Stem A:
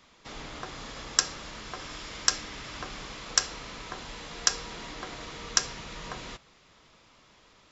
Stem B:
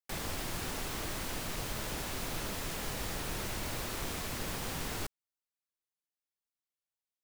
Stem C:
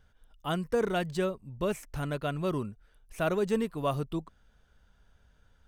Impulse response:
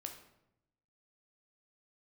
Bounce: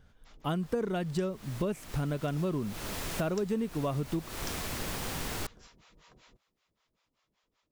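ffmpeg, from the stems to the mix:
-filter_complex "[0:a]acrossover=split=540[a][b];[a]aeval=exprs='val(0)*(1-1/2+1/2*cos(2*PI*5.2*n/s))':c=same[c];[b]aeval=exprs='val(0)*(1-1/2-1/2*cos(2*PI*5.2*n/s))':c=same[d];[c][d]amix=inputs=2:normalize=0,volume=-15.5dB[e];[1:a]dynaudnorm=f=500:g=7:m=12.5dB,adelay=400,volume=-10.5dB[f];[2:a]equalizer=f=210:w=0.54:g=7.5,volume=1dB,asplit=2[g][h];[h]apad=whole_len=336813[i];[f][i]sidechaincompress=threshold=-33dB:ratio=3:attack=49:release=348[j];[e][j][g]amix=inputs=3:normalize=0,acompressor=threshold=-28dB:ratio=6"

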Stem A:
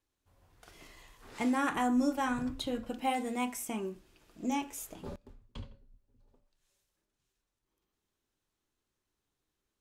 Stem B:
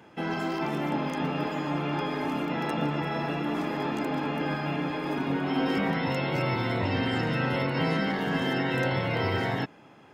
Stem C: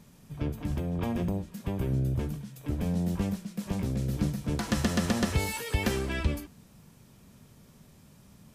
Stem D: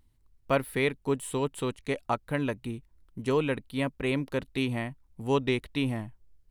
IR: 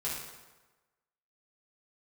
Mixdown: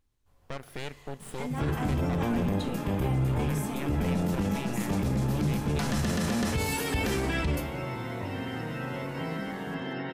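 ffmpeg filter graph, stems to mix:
-filter_complex "[0:a]acompressor=threshold=-38dB:ratio=2.5,volume=-1.5dB,asplit=2[a][b];[b]volume=-11dB[c];[1:a]highshelf=f=4.5k:g=-9,adelay=1400,volume=-7dB[d];[2:a]adelay=1200,volume=3dB,asplit=2[e][f];[f]volume=-13dB[g];[3:a]asubboost=boost=3:cutoff=190,alimiter=limit=-22dB:level=0:latency=1:release=200,aeval=exprs='0.112*(cos(1*acos(clip(val(0)/0.112,-1,1)))-cos(1*PI/2))+0.0501*(cos(4*acos(clip(val(0)/0.112,-1,1)))-cos(4*PI/2))+0.0126*(cos(8*acos(clip(val(0)/0.112,-1,1)))-cos(8*PI/2))':c=same,volume=-10.5dB,asplit=2[h][i];[i]volume=-20.5dB[j];[4:a]atrim=start_sample=2205[k];[c][g][j]amix=inputs=3:normalize=0[l];[l][k]afir=irnorm=-1:irlink=0[m];[a][d][e][h][m]amix=inputs=5:normalize=0,alimiter=limit=-20dB:level=0:latency=1:release=20"

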